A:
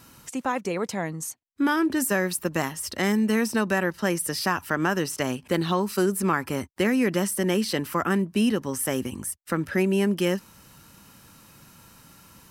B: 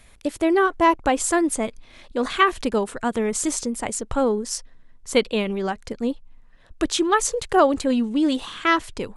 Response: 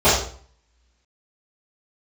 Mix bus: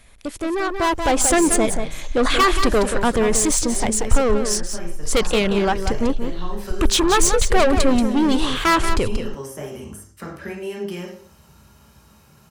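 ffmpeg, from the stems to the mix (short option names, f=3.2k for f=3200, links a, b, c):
-filter_complex "[0:a]acrossover=split=430|1200[a][b][c];[a]acompressor=threshold=-33dB:ratio=4[d];[b]acompressor=threshold=-38dB:ratio=4[e];[c]acompressor=threshold=-34dB:ratio=4[f];[d][e][f]amix=inputs=3:normalize=0,adelay=700,volume=-17dB,asplit=2[g][h];[h]volume=-19dB[i];[1:a]asoftclip=type=tanh:threshold=-22dB,asubboost=boost=4.5:cutoff=100,volume=0.5dB,asplit=3[j][k][l];[k]volume=-8.5dB[m];[l]apad=whole_len=582461[n];[g][n]sidechaincompress=threshold=-35dB:ratio=8:attack=16:release=124[o];[2:a]atrim=start_sample=2205[p];[i][p]afir=irnorm=-1:irlink=0[q];[m]aecho=0:1:182:1[r];[o][j][q][r]amix=inputs=4:normalize=0,dynaudnorm=f=630:g=3:m=10dB"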